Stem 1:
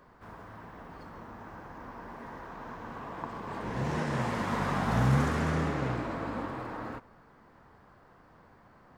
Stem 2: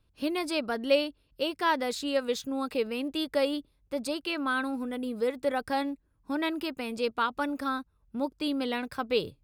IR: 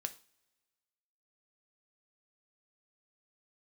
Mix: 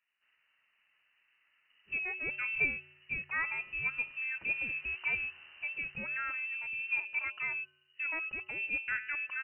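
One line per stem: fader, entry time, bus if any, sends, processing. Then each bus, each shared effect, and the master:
-17.5 dB, 0.00 s, no send, none
+0.5 dB, 1.70 s, no send, bass shelf 470 Hz +6 dB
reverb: none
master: feedback comb 230 Hz, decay 0.95 s, mix 70%; frequency inversion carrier 2.9 kHz

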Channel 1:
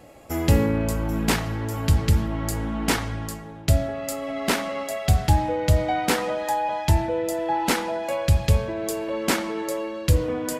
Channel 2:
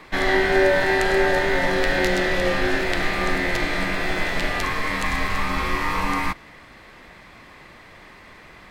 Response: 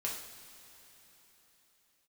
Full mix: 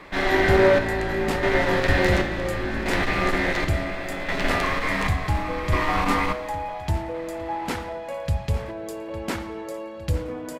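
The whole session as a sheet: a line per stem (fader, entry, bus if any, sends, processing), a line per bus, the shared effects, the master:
-5.5 dB, 0.00 s, no send, echo send -14.5 dB, none
-2.0 dB, 0.00 s, send -4 dB, no echo send, square tremolo 0.7 Hz, depth 65%, duty 55%; one-sided clip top -23.5 dBFS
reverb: on, pre-delay 3 ms
echo: feedback delay 857 ms, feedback 53%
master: treble shelf 4.3 kHz -8 dB

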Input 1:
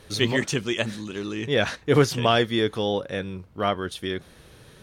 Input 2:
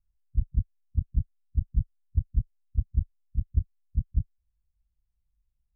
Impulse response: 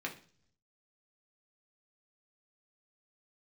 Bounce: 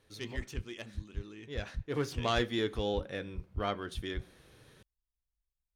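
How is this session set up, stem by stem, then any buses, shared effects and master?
1.80 s -20.5 dB -> 2.36 s -11 dB, 0.00 s, send -10 dB, self-modulated delay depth 0.078 ms
-13.5 dB, 0.00 s, no send, none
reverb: on, pre-delay 3 ms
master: none

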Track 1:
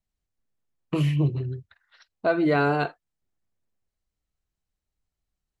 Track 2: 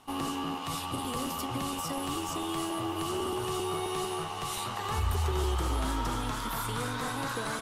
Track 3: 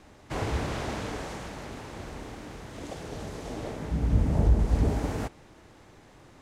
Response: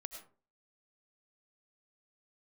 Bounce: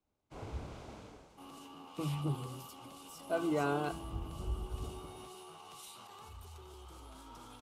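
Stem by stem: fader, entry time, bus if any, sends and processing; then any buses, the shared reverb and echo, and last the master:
-17.0 dB, 1.05 s, no send, none
-10.0 dB, 1.30 s, no send, bass shelf 190 Hz -6 dB; peak limiter -31 dBFS, peak gain reduction 9.5 dB
1.02 s -15 dB -> 1.70 s -22 dB, 0.00 s, no send, none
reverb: none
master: peaking EQ 1.8 kHz -10.5 dB 0.3 oct; three bands expanded up and down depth 70%

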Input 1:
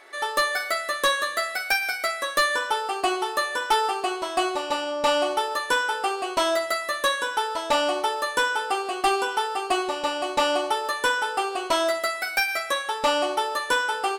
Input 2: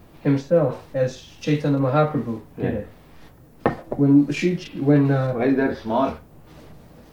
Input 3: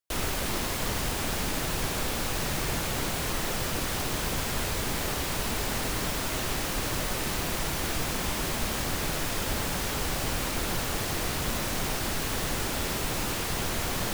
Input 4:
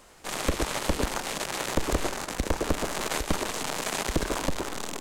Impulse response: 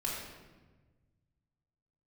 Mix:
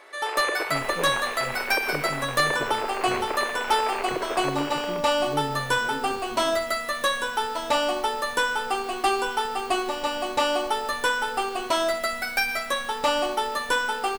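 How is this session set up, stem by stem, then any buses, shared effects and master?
-1.0 dB, 0.00 s, no send, none
-19.5 dB, 0.45 s, no send, bass shelf 180 Hz +8 dB
-9.0 dB, 0.65 s, no send, peaking EQ 9.1 kHz -10 dB 1.8 oct; robot voice 241 Hz
+0.5 dB, 0.00 s, no send, elliptic band-pass 380–2600 Hz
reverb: none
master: none

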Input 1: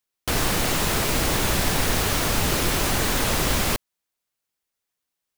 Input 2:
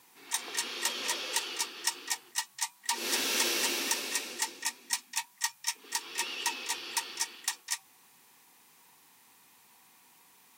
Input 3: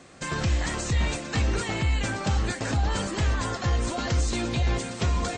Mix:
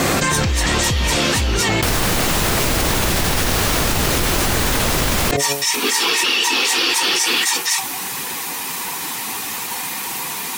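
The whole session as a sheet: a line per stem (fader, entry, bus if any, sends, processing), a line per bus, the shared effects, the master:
+1.5 dB, 1.55 s, no send, de-hum 141 Hz, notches 5
-5.0 dB, 0.00 s, no send, phase randomisation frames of 50 ms
-5.5 dB, 0.00 s, no send, peak limiter -22 dBFS, peak gain reduction 6.5 dB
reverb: none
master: level flattener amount 100%

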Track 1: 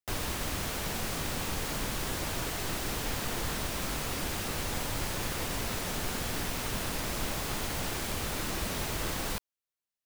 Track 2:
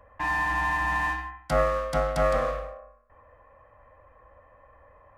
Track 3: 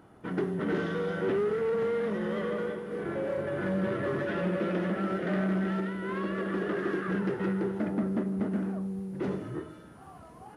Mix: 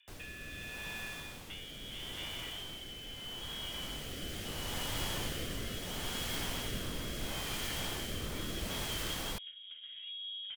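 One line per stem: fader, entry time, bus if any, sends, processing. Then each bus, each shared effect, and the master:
3.63 s -12 dB -> 4.38 s -3 dB, 0.00 s, no bus, no send, none
-9.5 dB, 0.00 s, bus A, no send, none
+1.0 dB, 1.30 s, bus A, no send, vibrato 4.4 Hz 29 cents; flange 0.43 Hz, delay 9.6 ms, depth 4.8 ms, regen +30%
bus A: 0.0 dB, frequency inversion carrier 3.5 kHz; compression 16:1, threshold -40 dBFS, peak gain reduction 15 dB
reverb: none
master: rotary cabinet horn 0.75 Hz

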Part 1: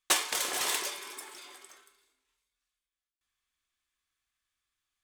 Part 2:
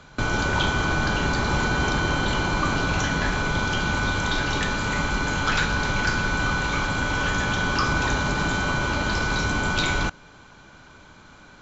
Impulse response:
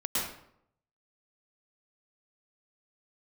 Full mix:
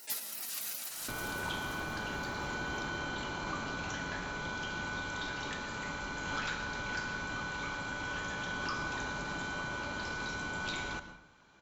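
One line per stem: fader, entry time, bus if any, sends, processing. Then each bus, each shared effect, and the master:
+0.5 dB, 0.00 s, send -12.5 dB, echo send -8.5 dB, spectral gate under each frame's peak -15 dB weak; high-pass 560 Hz 6 dB/octave
-15.0 dB, 0.90 s, send -16.5 dB, no echo send, bass shelf 130 Hz -9.5 dB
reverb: on, RT60 0.70 s, pre-delay 102 ms
echo: feedback delay 524 ms, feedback 35%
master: swell ahead of each attack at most 31 dB/s

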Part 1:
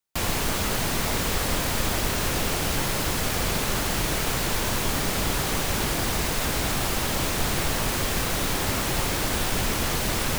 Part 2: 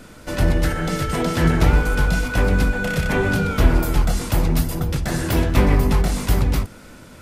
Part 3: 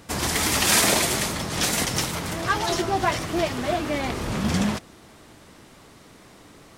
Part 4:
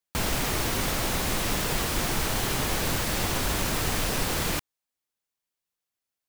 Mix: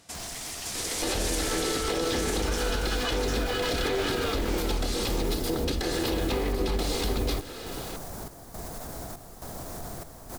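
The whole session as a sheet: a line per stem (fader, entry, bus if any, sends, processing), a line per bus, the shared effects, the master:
-9.0 dB, 2.40 s, bus A, no send, echo send -16.5 dB, trance gate "xxxxxxx..." 171 bpm -12 dB; peaking EQ 2.7 kHz -14.5 dB 1.4 oct
+0.5 dB, 0.75 s, no bus, no send, no echo send, comb filter that takes the minimum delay 2.4 ms; graphic EQ 125/250/500/4000 Hz -6/+6/+7/+12 dB; compression 4:1, threshold -24 dBFS, peak gain reduction 13 dB
-13.5 dB, 0.00 s, bus A, no send, echo send -3.5 dB, saturation -16 dBFS, distortion -16 dB; peaking EQ 6.9 kHz +12 dB 2.7 oct
-10.5 dB, 0.00 s, bus A, no send, no echo send, none
bus A: 0.0 dB, peaking EQ 690 Hz +8.5 dB 0.24 oct; peak limiter -28.5 dBFS, peak gain reduction 12.5 dB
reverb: none
echo: delay 555 ms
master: peak limiter -18.5 dBFS, peak gain reduction 7.5 dB

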